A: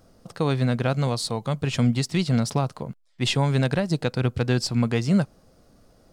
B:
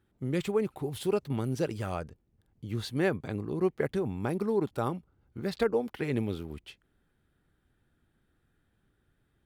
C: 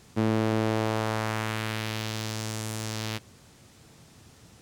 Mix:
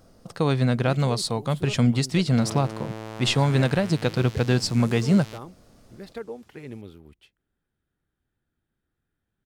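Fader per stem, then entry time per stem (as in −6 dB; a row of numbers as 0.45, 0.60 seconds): +1.0, −8.5, −9.5 decibels; 0.00, 0.55, 2.20 seconds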